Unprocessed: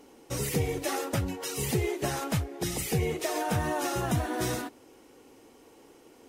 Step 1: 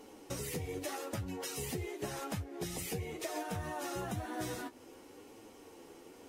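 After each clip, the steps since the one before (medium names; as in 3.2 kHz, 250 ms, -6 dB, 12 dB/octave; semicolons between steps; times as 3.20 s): compression 4:1, threshold -39 dBFS, peak gain reduction 13.5 dB; flange 0.93 Hz, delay 8.9 ms, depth 3.4 ms, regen +41%; trim +4.5 dB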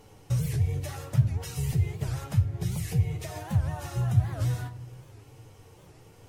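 resonant low shelf 180 Hz +13 dB, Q 3; simulated room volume 430 m³, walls mixed, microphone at 0.39 m; warped record 78 rpm, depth 250 cents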